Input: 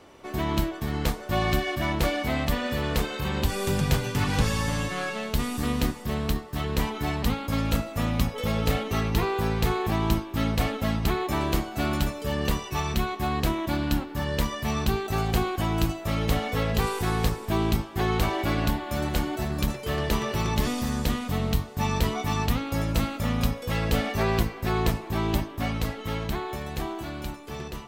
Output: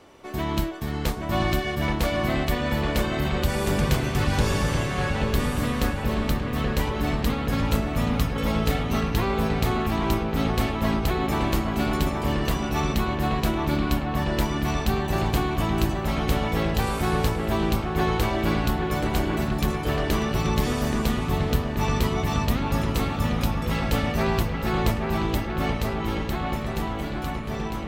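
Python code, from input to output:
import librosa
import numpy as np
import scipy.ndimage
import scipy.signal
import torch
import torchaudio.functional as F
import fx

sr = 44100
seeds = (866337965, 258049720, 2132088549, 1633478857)

y = fx.echo_wet_lowpass(x, sr, ms=829, feedback_pct=72, hz=2700.0, wet_db=-4.5)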